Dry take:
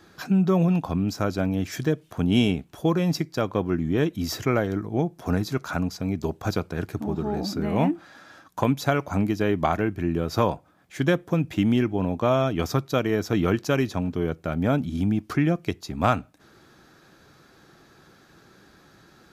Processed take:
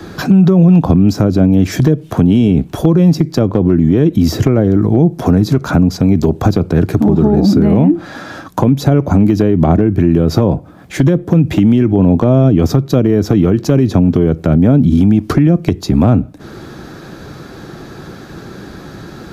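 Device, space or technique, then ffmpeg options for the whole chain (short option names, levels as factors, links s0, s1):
mastering chain: -filter_complex "[0:a]equalizer=f=4100:t=o:w=0.77:g=1.5,acrossover=split=93|510[s0][s1][s2];[s0]acompressor=threshold=0.00708:ratio=4[s3];[s1]acompressor=threshold=0.0708:ratio=4[s4];[s2]acompressor=threshold=0.0112:ratio=4[s5];[s3][s4][s5]amix=inputs=3:normalize=0,acompressor=threshold=0.0398:ratio=2.5,tiltshelf=f=750:g=5,asoftclip=type=hard:threshold=0.133,alimiter=level_in=12.6:limit=0.891:release=50:level=0:latency=1,volume=0.891"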